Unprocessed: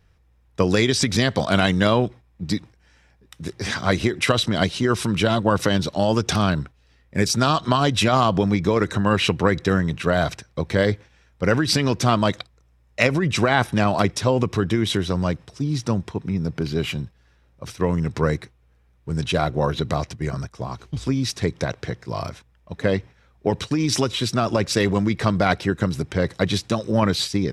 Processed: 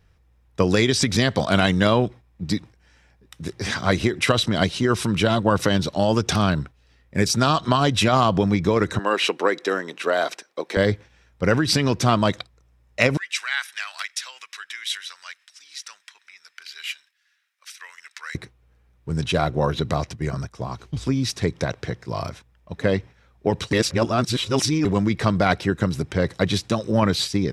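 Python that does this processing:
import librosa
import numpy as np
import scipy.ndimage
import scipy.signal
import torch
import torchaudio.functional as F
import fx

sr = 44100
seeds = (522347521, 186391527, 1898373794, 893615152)

y = fx.highpass(x, sr, hz=310.0, slope=24, at=(8.99, 10.77))
y = fx.cheby1_highpass(y, sr, hz=1700.0, order=3, at=(13.17, 18.35))
y = fx.edit(y, sr, fx.reverse_span(start_s=23.73, length_s=1.12), tone=tone)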